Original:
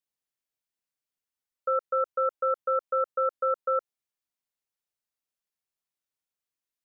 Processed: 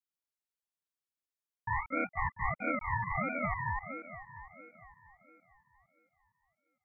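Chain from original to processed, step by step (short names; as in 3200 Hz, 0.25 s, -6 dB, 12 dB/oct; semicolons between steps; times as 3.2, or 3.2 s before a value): echoes that change speed 0.118 s, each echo +1 st, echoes 3; echo with dull and thin repeats by turns 0.23 s, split 1300 Hz, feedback 69%, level -10 dB; ring modulator with a swept carrier 630 Hz, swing 35%, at 1.5 Hz; gain -6.5 dB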